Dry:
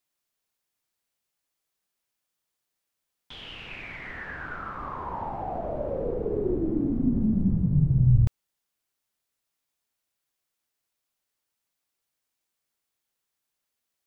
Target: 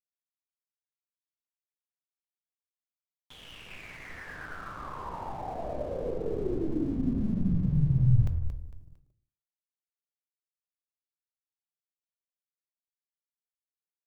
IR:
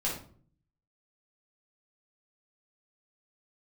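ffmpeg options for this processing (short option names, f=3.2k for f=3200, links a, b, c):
-filter_complex "[0:a]asplit=5[a][b][c][d][e];[b]adelay=227,afreqshift=-43,volume=-9dB[f];[c]adelay=454,afreqshift=-86,volume=-18.4dB[g];[d]adelay=681,afreqshift=-129,volume=-27.7dB[h];[e]adelay=908,afreqshift=-172,volume=-37.1dB[i];[a][f][g][h][i]amix=inputs=5:normalize=0,aeval=exprs='val(0)+0.000794*(sin(2*PI*50*n/s)+sin(2*PI*2*50*n/s)/2+sin(2*PI*3*50*n/s)/3+sin(2*PI*4*50*n/s)/4+sin(2*PI*5*50*n/s)/5)':c=same,aeval=exprs='sgn(val(0))*max(abs(val(0))-0.00355,0)':c=same,asplit=2[j][k];[1:a]atrim=start_sample=2205,afade=t=out:st=0.38:d=0.01,atrim=end_sample=17199[l];[k][l]afir=irnorm=-1:irlink=0,volume=-15dB[m];[j][m]amix=inputs=2:normalize=0,volume=-5.5dB"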